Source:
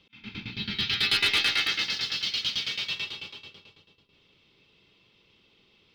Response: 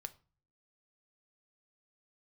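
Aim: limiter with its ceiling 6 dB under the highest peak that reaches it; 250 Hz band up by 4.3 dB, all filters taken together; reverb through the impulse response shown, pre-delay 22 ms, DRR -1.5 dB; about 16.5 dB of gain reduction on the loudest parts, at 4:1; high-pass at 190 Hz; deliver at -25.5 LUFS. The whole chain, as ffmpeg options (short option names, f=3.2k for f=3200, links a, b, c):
-filter_complex "[0:a]highpass=190,equalizer=f=250:t=o:g=8,acompressor=threshold=-41dB:ratio=4,alimiter=level_in=9dB:limit=-24dB:level=0:latency=1,volume=-9dB,asplit=2[a][b];[1:a]atrim=start_sample=2205,adelay=22[c];[b][c]afir=irnorm=-1:irlink=0,volume=5.5dB[d];[a][d]amix=inputs=2:normalize=0,volume=13dB"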